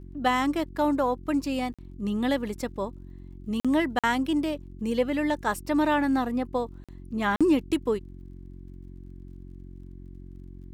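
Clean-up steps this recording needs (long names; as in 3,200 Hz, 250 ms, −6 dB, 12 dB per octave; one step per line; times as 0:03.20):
click removal
hum removal 45.3 Hz, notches 8
repair the gap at 0:01.74/0:03.60/0:03.99/0:06.84/0:07.36, 46 ms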